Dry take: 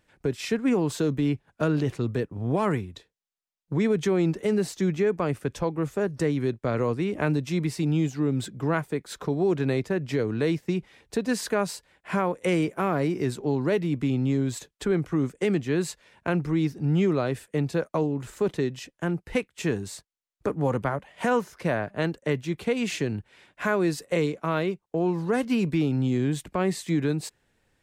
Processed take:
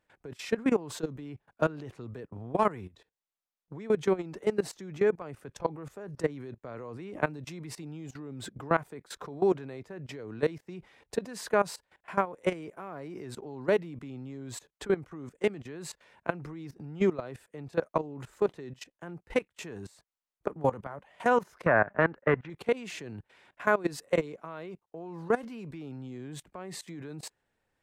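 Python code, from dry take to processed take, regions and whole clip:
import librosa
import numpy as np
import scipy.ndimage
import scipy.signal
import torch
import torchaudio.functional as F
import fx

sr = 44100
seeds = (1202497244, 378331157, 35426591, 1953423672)

y = fx.chain(x, sr, fx.leveller(passes=1),
    fx.lowpass_res(hz=1700.0, q=2.1), at=(21.66, 22.5))
y = fx.peak_eq(y, sr, hz=890.0, db=7.0, octaves=2.3)
y = fx.level_steps(y, sr, step_db=19)
y = y * 10.0 ** (-3.0 / 20.0)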